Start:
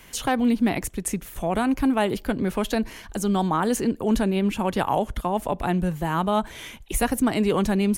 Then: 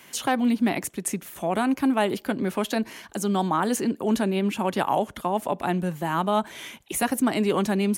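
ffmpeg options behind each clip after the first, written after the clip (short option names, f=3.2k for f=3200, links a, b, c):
-af "highpass=180,bandreject=f=470:w=12"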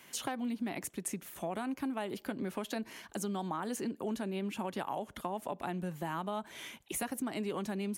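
-af "acompressor=threshold=-26dB:ratio=6,volume=-7dB"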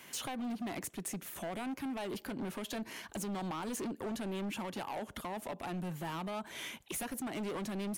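-filter_complex "[0:a]asplit=2[a][b];[b]alimiter=level_in=6dB:limit=-24dB:level=0:latency=1:release=176,volume=-6dB,volume=-2dB[c];[a][c]amix=inputs=2:normalize=0,asoftclip=type=hard:threshold=-33.5dB,volume=-2dB"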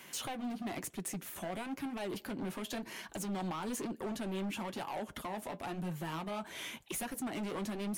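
-af "areverse,acompressor=mode=upward:threshold=-43dB:ratio=2.5,areverse,flanger=delay=5.2:depth=6:regen=-46:speed=1:shape=sinusoidal,volume=4dB"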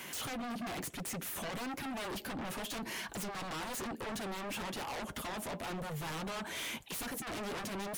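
-af "aeval=exprs='0.0266*sin(PI/2*2.82*val(0)/0.0266)':c=same,volume=-5dB"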